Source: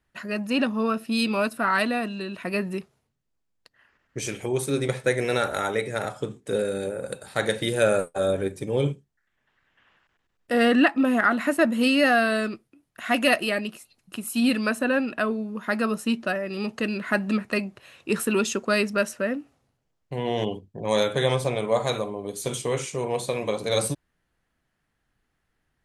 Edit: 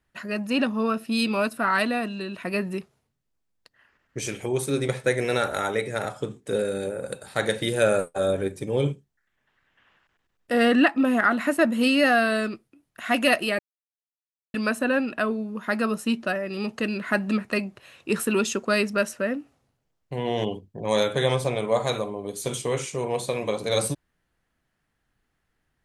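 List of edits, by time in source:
0:13.59–0:14.54: silence

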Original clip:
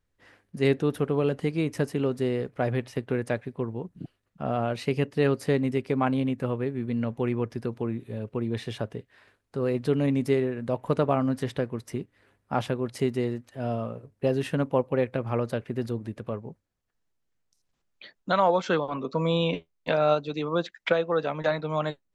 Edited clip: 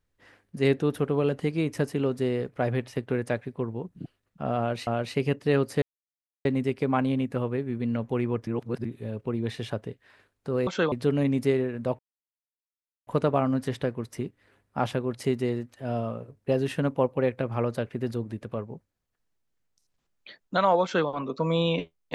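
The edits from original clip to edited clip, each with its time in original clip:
0:04.58–0:04.87: repeat, 2 plays
0:05.53: splice in silence 0.63 s
0:07.55–0:07.93: reverse
0:10.82: splice in silence 1.08 s
0:18.58–0:18.83: duplicate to 0:09.75

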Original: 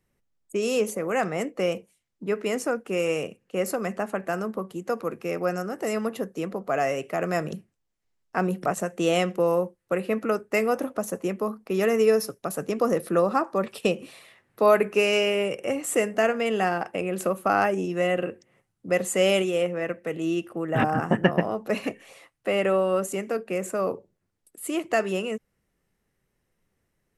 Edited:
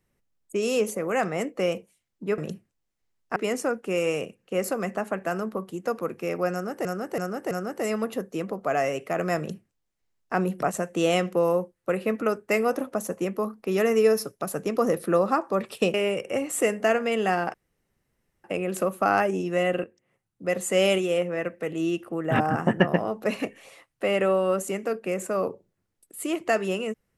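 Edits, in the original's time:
0:05.54–0:05.87: repeat, 4 plays
0:07.41–0:08.39: duplicate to 0:02.38
0:13.97–0:15.28: remove
0:16.88: splice in room tone 0.90 s
0:18.28–0:19.28: fade in, from −13.5 dB

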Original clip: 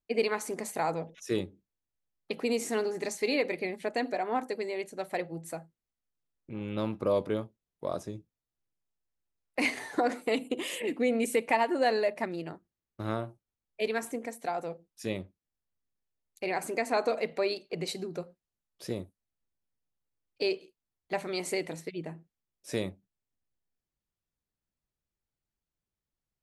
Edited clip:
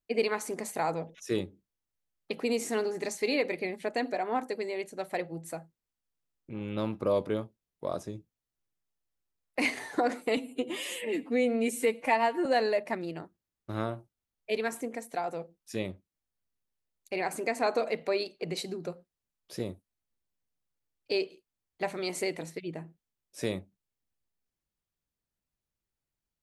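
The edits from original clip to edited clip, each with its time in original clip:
0:10.37–0:11.76: time-stretch 1.5×

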